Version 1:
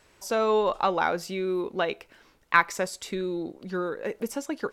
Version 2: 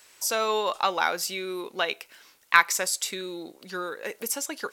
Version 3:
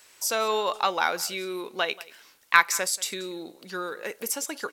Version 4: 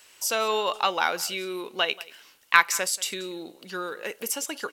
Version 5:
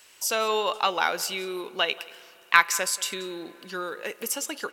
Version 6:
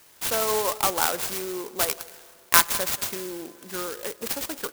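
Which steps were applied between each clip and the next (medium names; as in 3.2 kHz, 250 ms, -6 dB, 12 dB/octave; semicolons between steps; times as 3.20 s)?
tilt EQ +4 dB/octave
delay 183 ms -20.5 dB
peaking EQ 2.9 kHz +7.5 dB 0.23 oct
spring tank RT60 3.6 s, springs 30/58 ms, chirp 55 ms, DRR 20 dB
sampling jitter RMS 0.12 ms; trim +1 dB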